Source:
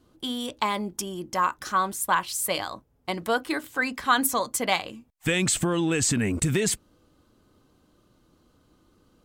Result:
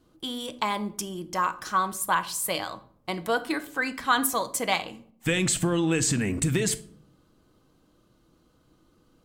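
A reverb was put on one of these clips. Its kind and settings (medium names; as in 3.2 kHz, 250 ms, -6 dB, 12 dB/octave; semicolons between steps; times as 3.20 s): simulated room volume 880 m³, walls furnished, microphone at 0.64 m; trim -1.5 dB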